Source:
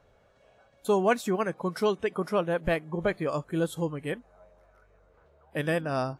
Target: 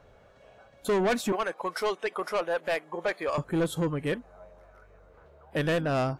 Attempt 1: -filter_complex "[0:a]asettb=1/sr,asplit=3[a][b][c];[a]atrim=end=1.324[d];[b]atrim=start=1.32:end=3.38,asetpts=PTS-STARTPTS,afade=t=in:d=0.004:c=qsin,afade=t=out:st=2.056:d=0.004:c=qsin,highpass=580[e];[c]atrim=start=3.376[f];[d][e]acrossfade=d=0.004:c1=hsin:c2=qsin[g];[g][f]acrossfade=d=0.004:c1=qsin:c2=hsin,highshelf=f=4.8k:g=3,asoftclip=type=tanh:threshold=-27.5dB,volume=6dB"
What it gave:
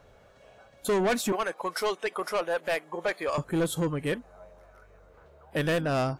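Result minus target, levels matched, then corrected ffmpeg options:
8000 Hz band +4.5 dB
-filter_complex "[0:a]asettb=1/sr,asplit=3[a][b][c];[a]atrim=end=1.324[d];[b]atrim=start=1.32:end=3.38,asetpts=PTS-STARTPTS,afade=t=in:d=0.004:c=qsin,afade=t=out:st=2.056:d=0.004:c=qsin,highpass=580[e];[c]atrim=start=3.376[f];[d][e]acrossfade=d=0.004:c1=hsin:c2=qsin[g];[g][f]acrossfade=d=0.004:c1=qsin:c2=hsin,highshelf=f=4.8k:g=-4,asoftclip=type=tanh:threshold=-27.5dB,volume=6dB"

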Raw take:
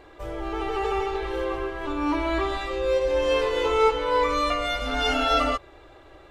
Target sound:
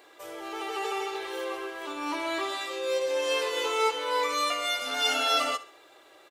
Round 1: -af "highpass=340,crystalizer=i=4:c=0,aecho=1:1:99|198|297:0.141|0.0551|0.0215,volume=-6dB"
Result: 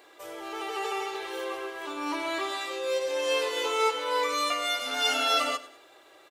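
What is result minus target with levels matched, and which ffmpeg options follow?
echo 32 ms late
-af "highpass=340,crystalizer=i=4:c=0,aecho=1:1:67|134|201:0.141|0.0551|0.0215,volume=-6dB"

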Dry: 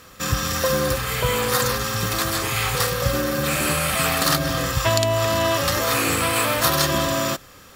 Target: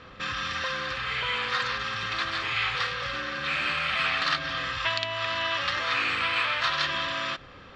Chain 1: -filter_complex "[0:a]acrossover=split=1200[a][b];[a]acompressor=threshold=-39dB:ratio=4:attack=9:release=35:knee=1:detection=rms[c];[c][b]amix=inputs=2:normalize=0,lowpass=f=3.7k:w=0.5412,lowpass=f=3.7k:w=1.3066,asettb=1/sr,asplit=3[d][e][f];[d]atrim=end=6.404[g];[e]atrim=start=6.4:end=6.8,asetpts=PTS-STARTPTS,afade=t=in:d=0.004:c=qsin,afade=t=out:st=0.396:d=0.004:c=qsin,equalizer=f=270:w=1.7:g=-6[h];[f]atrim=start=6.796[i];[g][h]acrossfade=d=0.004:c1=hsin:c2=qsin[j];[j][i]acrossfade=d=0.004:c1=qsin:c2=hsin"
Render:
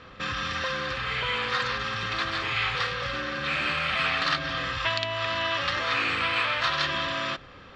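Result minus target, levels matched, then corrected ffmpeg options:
compressor: peak gain reduction -4.5 dB
-filter_complex "[0:a]acrossover=split=1200[a][b];[a]acompressor=threshold=-45dB:ratio=4:attack=9:release=35:knee=1:detection=rms[c];[c][b]amix=inputs=2:normalize=0,lowpass=f=3.7k:w=0.5412,lowpass=f=3.7k:w=1.3066,asettb=1/sr,asplit=3[d][e][f];[d]atrim=end=6.404[g];[e]atrim=start=6.4:end=6.8,asetpts=PTS-STARTPTS,afade=t=in:d=0.004:c=qsin,afade=t=out:st=0.396:d=0.004:c=qsin,equalizer=f=270:w=1.7:g=-6[h];[f]atrim=start=6.796[i];[g][h]acrossfade=d=0.004:c1=hsin:c2=qsin[j];[j][i]acrossfade=d=0.004:c1=qsin:c2=hsin"

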